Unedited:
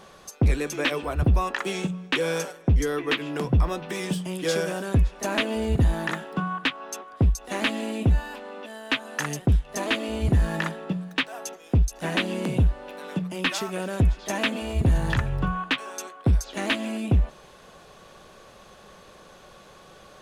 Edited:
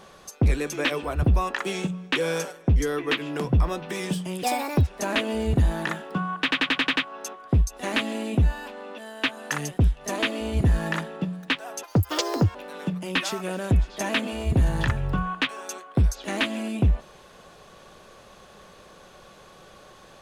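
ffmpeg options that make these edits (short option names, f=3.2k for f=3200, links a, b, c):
-filter_complex "[0:a]asplit=11[a][b][c][d][e][f][g][h][i][j][k];[a]atrim=end=4.434[l];[b]atrim=start=4.43:end=5.09,asetpts=PTS-STARTPTS,asetrate=66150,aresample=44100[m];[c]atrim=start=5.086:end=6.732[n];[d]atrim=start=6.638:end=6.732[o];[e]atrim=start=6.638:end=6.732[p];[f]atrim=start=6.638:end=6.732[q];[g]atrim=start=6.638:end=6.732[r];[h]atrim=start=6.638:end=6.732[s];[i]atrim=start=6.638:end=11.514[t];[j]atrim=start=11.51:end=12.84,asetpts=PTS-STARTPTS,asetrate=81585,aresample=44100,atrim=end_sample=31704,asetpts=PTS-STARTPTS[u];[k]atrim=start=12.836[v];[l][m]acrossfade=d=0.004:c1=hsin:c2=hsin[w];[w][n]acrossfade=d=0.004:c1=hsin:c2=hsin[x];[x][o]acrossfade=d=0.004:c1=hsin:c2=hsin[y];[y][p]acrossfade=d=0.004:c1=hsin:c2=hsin[z];[z][q]acrossfade=d=0.004:c1=hsin:c2=hsin[aa];[aa][r]acrossfade=d=0.004:c1=hsin:c2=hsin[ab];[ab][s]acrossfade=d=0.004:c1=hsin:c2=hsin[ac];[ac][t]acrossfade=d=0.004:c1=hsin:c2=hsin[ad];[ad][u]acrossfade=d=0.004:c1=hsin:c2=hsin[ae];[ae][v]acrossfade=d=0.004:c1=hsin:c2=hsin"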